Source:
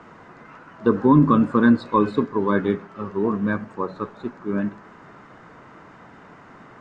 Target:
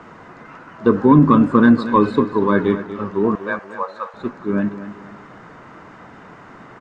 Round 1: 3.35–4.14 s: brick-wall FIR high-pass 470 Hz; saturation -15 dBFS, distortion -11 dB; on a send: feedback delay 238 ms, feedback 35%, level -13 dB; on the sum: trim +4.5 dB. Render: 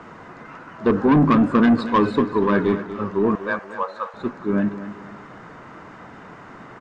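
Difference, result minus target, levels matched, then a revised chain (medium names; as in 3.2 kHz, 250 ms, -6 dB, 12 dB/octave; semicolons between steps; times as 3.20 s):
saturation: distortion +16 dB
3.35–4.14 s: brick-wall FIR high-pass 470 Hz; saturation -3.5 dBFS, distortion -27 dB; on a send: feedback delay 238 ms, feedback 35%, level -13 dB; on the sum: trim +4.5 dB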